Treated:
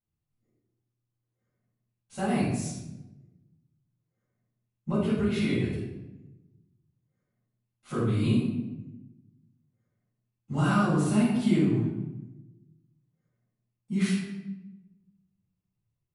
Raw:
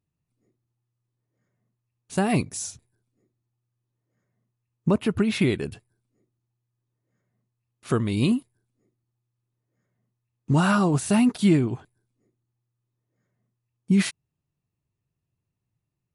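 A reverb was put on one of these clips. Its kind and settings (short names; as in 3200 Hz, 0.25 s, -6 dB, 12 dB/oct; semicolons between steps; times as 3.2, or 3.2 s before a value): shoebox room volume 400 m³, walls mixed, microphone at 7.1 m; gain -20 dB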